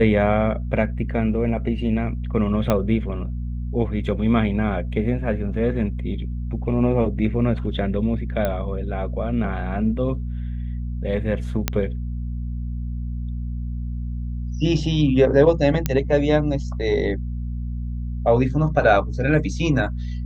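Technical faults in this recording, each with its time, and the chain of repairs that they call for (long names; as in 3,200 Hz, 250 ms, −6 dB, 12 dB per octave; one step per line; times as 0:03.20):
mains hum 60 Hz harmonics 4 −27 dBFS
0:02.70: click −7 dBFS
0:08.45: click −11 dBFS
0:11.68: click −4 dBFS
0:15.86: click −6 dBFS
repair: click removal
hum removal 60 Hz, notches 4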